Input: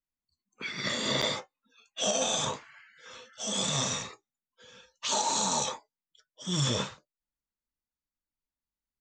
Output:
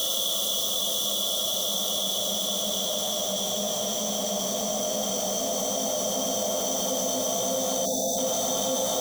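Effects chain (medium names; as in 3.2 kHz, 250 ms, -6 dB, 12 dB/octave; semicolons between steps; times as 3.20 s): zero-crossing glitches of -30.5 dBFS; brick-wall FIR band-stop 1.4–2.9 kHz; bass shelf 170 Hz +11 dB; waveshaping leveller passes 2; slow attack 431 ms; Paulstretch 46×, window 0.25 s, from 2.00 s; time-frequency box 7.85–8.18 s, 880–3400 Hz -28 dB; level flattener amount 70%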